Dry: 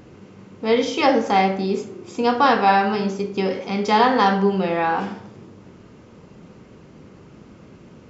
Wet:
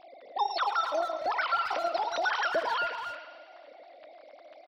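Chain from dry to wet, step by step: formants replaced by sine waves; dynamic bell 1.2 kHz, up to -5 dB, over -28 dBFS, Q 1; compression 3:1, threshold -26 dBFS, peak gain reduction 12 dB; harmony voices -12 st -18 dB; on a send: thinning echo 189 ms, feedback 71%, high-pass 510 Hz, level -11 dB; on the sum: speed mistake 45 rpm record played at 78 rpm; speakerphone echo 270 ms, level -7 dB; trim -2.5 dB

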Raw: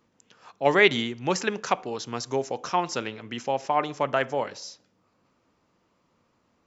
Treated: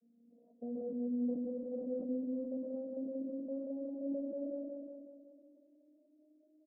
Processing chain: vocoder on a note that slides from A#3, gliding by +5 st; comb 3.3 ms, depth 54%; peak limiter -29.5 dBFS, peak gain reduction 18 dB; rippled Chebyshev low-pass 660 Hz, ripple 3 dB; on a send: feedback delay 184 ms, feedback 56%, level -3 dB; on the sum: decay stretcher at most 34 dB/s; trim -2.5 dB

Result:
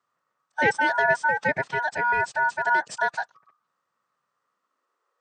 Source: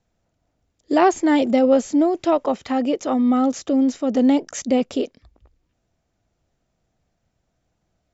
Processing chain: ring modulator 1.2 kHz; high-pass sweep 140 Hz -> 410 Hz, 6.88–7.86 s; time stretch by phase-locked vocoder 0.64×; trim -2.5 dB

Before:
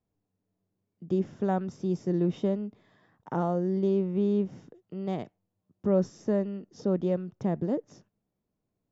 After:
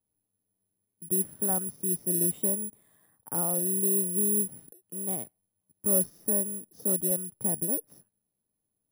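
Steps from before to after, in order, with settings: careless resampling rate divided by 4×, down filtered, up zero stuff; trim -6.5 dB

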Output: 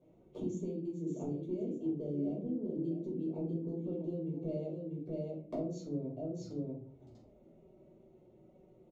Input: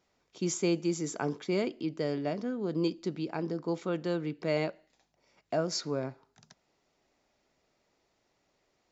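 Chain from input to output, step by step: local Wiener filter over 9 samples; high-pass 42 Hz; resonant low shelf 680 Hz +14 dB, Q 1.5; delay 642 ms -10 dB; compression 8:1, threshold -40 dBFS, peak gain reduction 29.5 dB; touch-sensitive flanger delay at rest 9.5 ms, full sweep at -43 dBFS; peaking EQ 1.7 kHz -14 dB 0.41 oct; simulated room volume 330 m³, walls furnished, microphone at 5.5 m; trim -5.5 dB

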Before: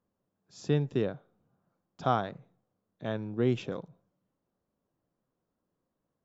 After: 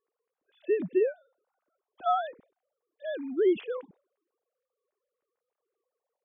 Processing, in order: formants replaced by sine waves; trim +2 dB

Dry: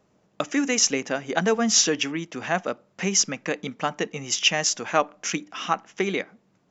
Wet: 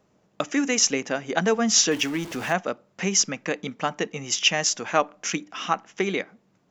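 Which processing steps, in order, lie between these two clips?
1.91–2.53 s: jump at every zero crossing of -33.5 dBFS

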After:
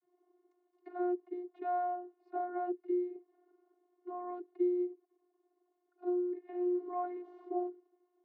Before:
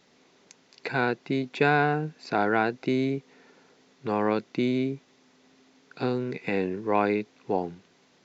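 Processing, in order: 6.60–7.68 s: jump at every zero crossing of -34.5 dBFS; Savitzky-Golay filter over 65 samples; gate with hold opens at -55 dBFS; 4.84–6.06 s: level held to a coarse grid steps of 16 dB; vocoder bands 32, saw 357 Hz; 2.72–3.16 s: peaking EQ 840 Hz -13 dB 0.68 oct; trim -8 dB

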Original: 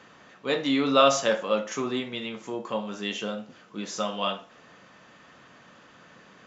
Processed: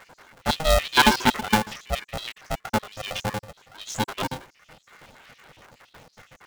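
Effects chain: random holes in the spectrogram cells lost 71%; polarity switched at an audio rate 320 Hz; trim +6.5 dB

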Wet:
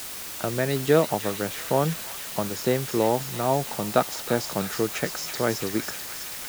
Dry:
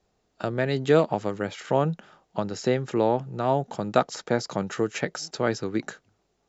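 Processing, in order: feedback echo behind a high-pass 326 ms, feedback 76%, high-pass 2.1 kHz, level -5.5 dB; word length cut 6-bit, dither triangular

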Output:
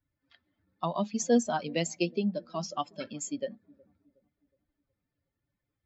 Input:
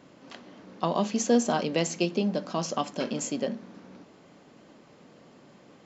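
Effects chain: expander on every frequency bin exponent 2; feedback echo behind a low-pass 366 ms, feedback 40%, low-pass 440 Hz, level -22.5 dB

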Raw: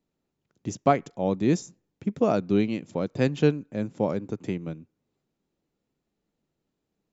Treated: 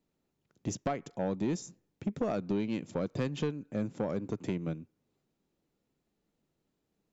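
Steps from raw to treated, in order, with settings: compression 10:1, threshold -25 dBFS, peak gain reduction 12 dB; saturation -23 dBFS, distortion -14 dB

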